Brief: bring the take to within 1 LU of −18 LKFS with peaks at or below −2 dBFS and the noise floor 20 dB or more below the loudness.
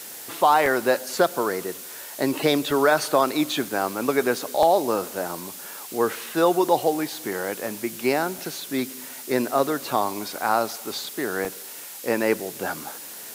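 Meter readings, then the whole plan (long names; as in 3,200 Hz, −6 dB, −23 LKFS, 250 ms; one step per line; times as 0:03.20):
number of dropouts 8; longest dropout 1.5 ms; background noise floor −39 dBFS; target noise floor −44 dBFS; integrated loudness −24.0 LKFS; sample peak −6.5 dBFS; target loudness −18.0 LKFS
→ repair the gap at 0:00.66/0:02.71/0:03.65/0:04.63/0:06.33/0:08.38/0:09.91/0:11.45, 1.5 ms
noise reduction from a noise print 6 dB
level +6 dB
brickwall limiter −2 dBFS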